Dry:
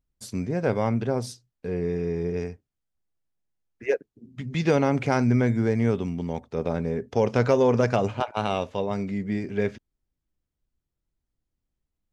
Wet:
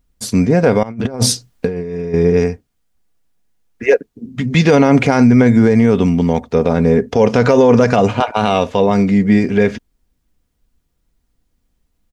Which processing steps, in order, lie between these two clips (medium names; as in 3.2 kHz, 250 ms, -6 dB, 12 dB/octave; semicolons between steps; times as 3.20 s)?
comb 4.2 ms, depth 31%; 0.83–2.14 s: compressor with a negative ratio -33 dBFS, ratio -0.5; loudness maximiser +16.5 dB; trim -1 dB